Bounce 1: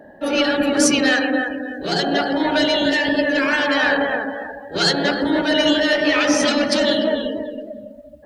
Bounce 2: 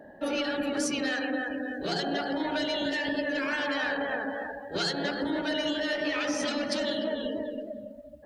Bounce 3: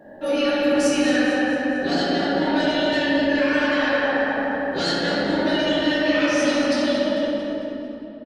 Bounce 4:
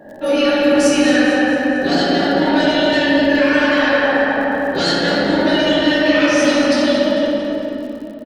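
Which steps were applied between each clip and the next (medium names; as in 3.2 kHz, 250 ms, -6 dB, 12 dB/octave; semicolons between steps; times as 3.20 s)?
compression 4:1, threshold -22 dBFS, peak gain reduction 9.5 dB; trim -5.5 dB
fade out at the end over 1.87 s; on a send: feedback delay 224 ms, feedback 49%, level -11 dB; on the sum: simulated room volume 130 m³, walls hard, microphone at 0.98 m
crackle 61 per s -38 dBFS; trim +6 dB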